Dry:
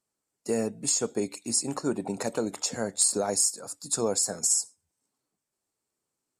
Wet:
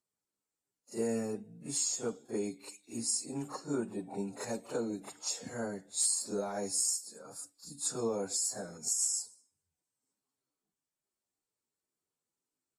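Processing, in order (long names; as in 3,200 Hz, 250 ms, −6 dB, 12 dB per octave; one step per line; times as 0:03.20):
time stretch by phase vocoder 2×
backwards echo 35 ms −9 dB
level −7 dB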